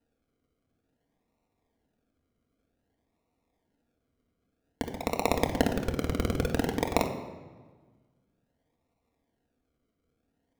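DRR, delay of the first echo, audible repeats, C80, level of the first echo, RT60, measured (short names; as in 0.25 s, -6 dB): 3.0 dB, none, none, 10.0 dB, none, 1.4 s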